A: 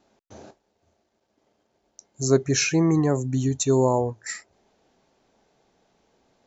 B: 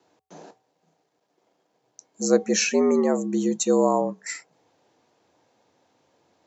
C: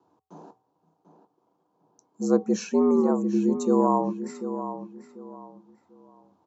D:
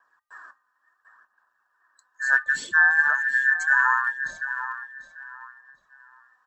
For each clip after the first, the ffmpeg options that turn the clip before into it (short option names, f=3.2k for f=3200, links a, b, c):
-af "bandreject=f=342.8:t=h:w=4,bandreject=f=685.6:t=h:w=4,bandreject=f=1.0284k:t=h:w=4,afreqshift=80"
-filter_complex "[0:a]firequalizer=gain_entry='entry(320,0);entry(570,-8);entry(1000,3);entry(1900,-20);entry(3000,-15)':delay=0.05:min_phase=1,asplit=2[a][b];[b]adelay=742,lowpass=f=3.6k:p=1,volume=-10.5dB,asplit=2[c][d];[d]adelay=742,lowpass=f=3.6k:p=1,volume=0.28,asplit=2[e][f];[f]adelay=742,lowpass=f=3.6k:p=1,volume=0.28[g];[c][e][g]amix=inputs=3:normalize=0[h];[a][h]amix=inputs=2:normalize=0,volume=1dB"
-af "afftfilt=real='real(if(between(b,1,1012),(2*floor((b-1)/92)+1)*92-b,b),0)':imag='imag(if(between(b,1,1012),(2*floor((b-1)/92)+1)*92-b,b),0)*if(between(b,1,1012),-1,1)':win_size=2048:overlap=0.75,aphaser=in_gain=1:out_gain=1:delay=4:decay=0.38:speed=0.7:type=sinusoidal"